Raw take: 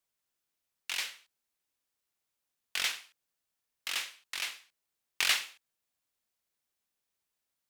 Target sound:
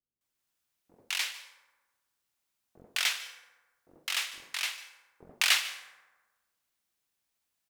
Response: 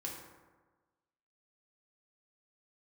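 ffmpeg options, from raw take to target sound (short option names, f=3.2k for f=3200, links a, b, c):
-filter_complex "[0:a]dynaudnorm=f=120:g=3:m=3dB,acrossover=split=470[a][b];[b]adelay=210[c];[a][c]amix=inputs=2:normalize=0,asplit=2[d][e];[1:a]atrim=start_sample=2205,adelay=148[f];[e][f]afir=irnorm=-1:irlink=0,volume=-13.5dB[g];[d][g]amix=inputs=2:normalize=0"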